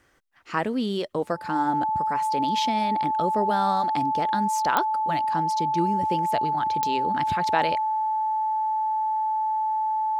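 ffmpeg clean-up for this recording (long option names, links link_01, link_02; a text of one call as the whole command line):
ffmpeg -i in.wav -af "adeclick=threshold=4,bandreject=frequency=870:width=30" out.wav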